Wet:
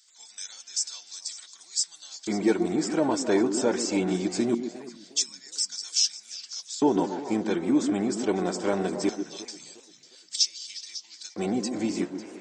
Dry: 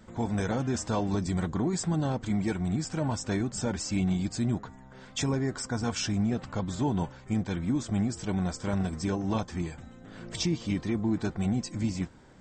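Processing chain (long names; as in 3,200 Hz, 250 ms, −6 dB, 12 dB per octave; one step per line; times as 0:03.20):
auto-filter high-pass square 0.22 Hz 360–5,000 Hz
echo through a band-pass that steps 137 ms, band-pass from 270 Hz, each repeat 1.4 octaves, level −5 dB
feedback echo with a swinging delay time 351 ms, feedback 32%, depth 192 cents, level −17 dB
level +4.5 dB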